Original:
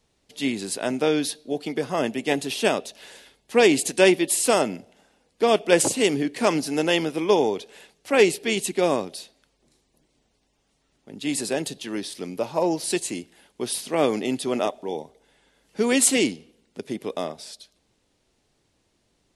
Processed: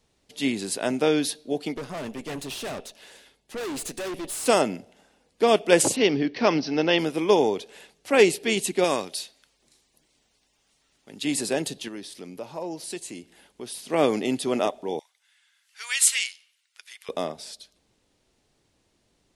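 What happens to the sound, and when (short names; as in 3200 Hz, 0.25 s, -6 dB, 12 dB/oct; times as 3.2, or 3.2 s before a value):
1.74–4.46 tube stage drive 30 dB, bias 0.7
5.96–6.99 steep low-pass 5900 Hz 96 dB/oct
8.84–11.25 tilt shelf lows -5.5 dB
11.88–13.9 compressor 1.5:1, threshold -48 dBFS
14.99–17.09 HPF 1400 Hz 24 dB/oct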